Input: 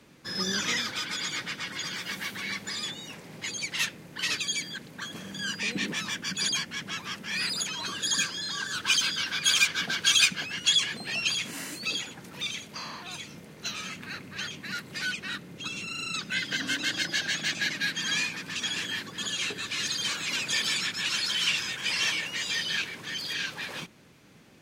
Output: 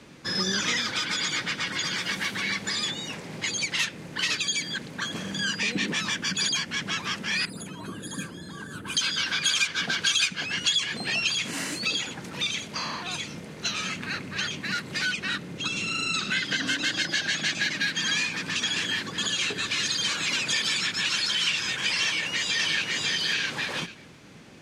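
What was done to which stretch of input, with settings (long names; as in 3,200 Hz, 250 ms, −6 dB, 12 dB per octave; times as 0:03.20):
0:07.45–0:08.97: drawn EQ curve 280 Hz 0 dB, 3,200 Hz −20 dB, 5,500 Hz −27 dB, 10,000 Hz −4 dB
0:15.76–0:16.29: thrown reverb, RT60 1.1 s, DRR 5 dB
0:22.04–0:23.05: delay throw 550 ms, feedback 10%, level −1.5 dB
whole clip: low-pass filter 9,200 Hz 12 dB per octave; downward compressor 2.5 to 1, threshold −32 dBFS; level +7 dB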